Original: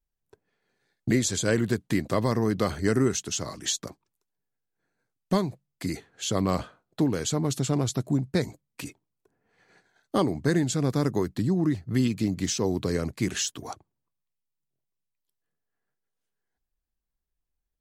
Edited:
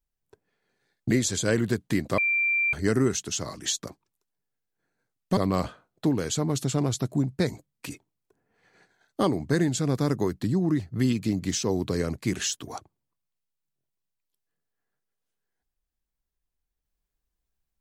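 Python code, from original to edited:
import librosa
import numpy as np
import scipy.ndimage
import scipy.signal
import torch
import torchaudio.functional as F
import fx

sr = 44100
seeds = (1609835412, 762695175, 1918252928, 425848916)

y = fx.edit(x, sr, fx.bleep(start_s=2.18, length_s=0.55, hz=2360.0, db=-21.0),
    fx.cut(start_s=5.37, length_s=0.95), tone=tone)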